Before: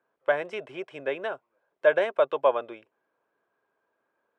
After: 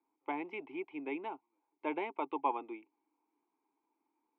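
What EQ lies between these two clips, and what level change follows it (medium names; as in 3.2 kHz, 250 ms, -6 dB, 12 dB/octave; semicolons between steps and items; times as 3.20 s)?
vowel filter u; high-pass 140 Hz; distance through air 91 m; +8.0 dB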